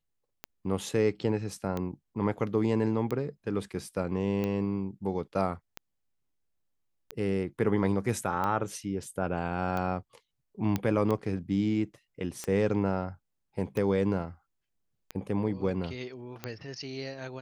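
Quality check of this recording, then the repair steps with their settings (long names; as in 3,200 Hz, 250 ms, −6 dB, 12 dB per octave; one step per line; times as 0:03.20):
scratch tick 45 rpm −19 dBFS
0:10.76: click −15 dBFS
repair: click removal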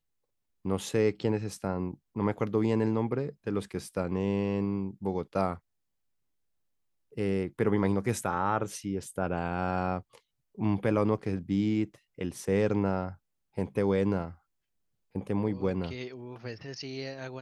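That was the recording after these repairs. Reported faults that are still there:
none of them is left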